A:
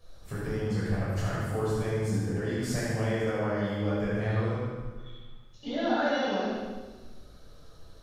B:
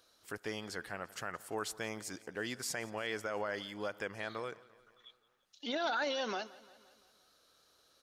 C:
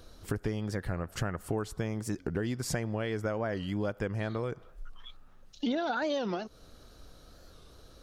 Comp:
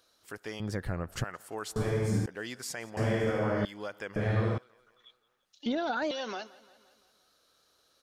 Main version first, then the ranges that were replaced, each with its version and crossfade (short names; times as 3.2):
B
0.6–1.24 from C
1.76–2.26 from A
2.97–3.65 from A
4.16–4.58 from A
5.66–6.11 from C